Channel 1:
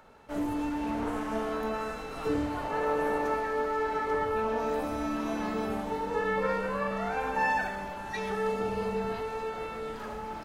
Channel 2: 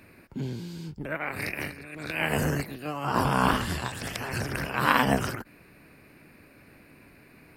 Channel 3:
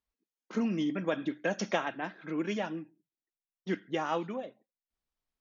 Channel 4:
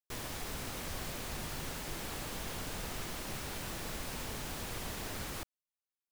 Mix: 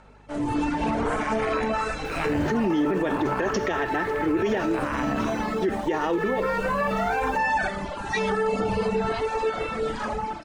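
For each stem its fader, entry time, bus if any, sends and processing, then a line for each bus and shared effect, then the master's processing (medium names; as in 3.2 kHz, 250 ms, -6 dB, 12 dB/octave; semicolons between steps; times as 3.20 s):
+2.0 dB, 0.00 s, no send, steep low-pass 9.8 kHz 72 dB/octave; reverb removal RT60 1.4 s; peak limiter -28 dBFS, peak gain reduction 9.5 dB
-12.0 dB, 0.00 s, no send, steep low-pass 2.7 kHz; hum 50 Hz, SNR 13 dB
+1.0 dB, 1.95 s, no send, small resonant body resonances 380/1800 Hz, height 15 dB, ringing for 45 ms
-20.0 dB, 1.95 s, no send, none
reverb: none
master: level rider gain up to 11 dB; peak limiter -16.5 dBFS, peak gain reduction 15 dB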